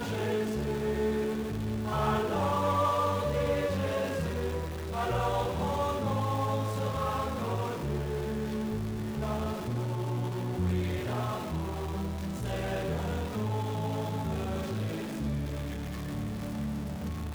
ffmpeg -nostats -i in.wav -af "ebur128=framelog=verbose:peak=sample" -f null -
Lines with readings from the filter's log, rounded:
Integrated loudness:
  I:         -32.0 LUFS
  Threshold: -41.9 LUFS
Loudness range:
  LRA:         4.1 LU
  Threshold: -51.8 LUFS
  LRA low:   -33.7 LUFS
  LRA high:  -29.6 LUFS
Sample peak:
  Peak:      -17.6 dBFS